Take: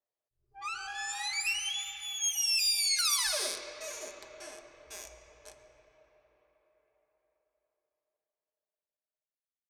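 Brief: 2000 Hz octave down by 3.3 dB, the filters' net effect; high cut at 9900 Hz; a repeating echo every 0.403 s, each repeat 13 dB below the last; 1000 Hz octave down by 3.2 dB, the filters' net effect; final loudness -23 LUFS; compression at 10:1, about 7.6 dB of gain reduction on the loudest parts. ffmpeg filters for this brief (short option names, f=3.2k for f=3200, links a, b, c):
-af "lowpass=9.9k,equalizer=f=1k:t=o:g=-3,equalizer=f=2k:t=o:g=-4,acompressor=threshold=-34dB:ratio=10,aecho=1:1:403|806|1209:0.224|0.0493|0.0108,volume=14dB"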